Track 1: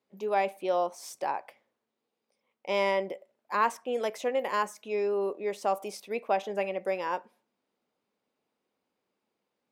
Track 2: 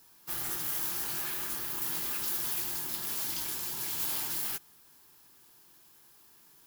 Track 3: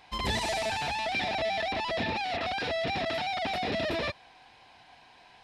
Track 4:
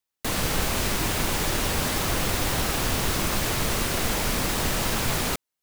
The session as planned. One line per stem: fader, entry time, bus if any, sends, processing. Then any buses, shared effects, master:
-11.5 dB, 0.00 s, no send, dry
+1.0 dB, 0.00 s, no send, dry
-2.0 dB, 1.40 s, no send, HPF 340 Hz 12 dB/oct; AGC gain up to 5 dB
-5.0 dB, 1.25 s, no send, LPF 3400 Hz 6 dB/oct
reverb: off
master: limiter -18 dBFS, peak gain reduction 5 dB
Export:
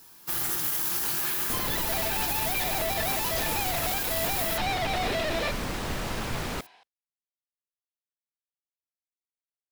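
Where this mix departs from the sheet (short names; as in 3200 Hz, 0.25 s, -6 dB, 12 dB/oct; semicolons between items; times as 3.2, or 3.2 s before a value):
stem 1: muted; stem 2 +1.0 dB -> +7.5 dB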